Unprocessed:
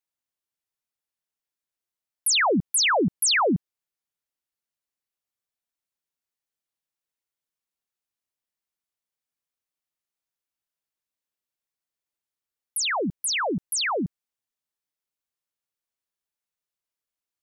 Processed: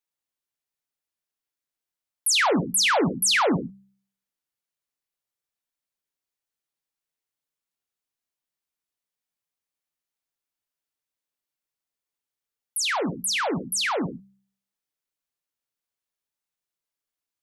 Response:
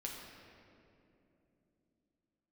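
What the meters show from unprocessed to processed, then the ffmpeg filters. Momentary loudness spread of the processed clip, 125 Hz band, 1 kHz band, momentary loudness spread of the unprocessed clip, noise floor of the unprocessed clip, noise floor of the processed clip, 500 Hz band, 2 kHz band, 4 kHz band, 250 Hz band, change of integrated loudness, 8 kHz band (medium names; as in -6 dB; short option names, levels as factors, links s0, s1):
9 LU, +0.5 dB, +0.5 dB, 9 LU, under -85 dBFS, under -85 dBFS, +0.5 dB, +0.5 dB, +0.5 dB, +0.5 dB, 0.0 dB, 0.0 dB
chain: -filter_complex "[0:a]bandreject=f=65.31:t=h:w=4,bandreject=f=130.62:t=h:w=4,bandreject=f=195.93:t=h:w=4,asplit=2[s0][s1];[1:a]atrim=start_sample=2205,atrim=end_sample=6174[s2];[s1][s2]afir=irnorm=-1:irlink=0,volume=1.12[s3];[s0][s3]amix=inputs=2:normalize=0,volume=0.596"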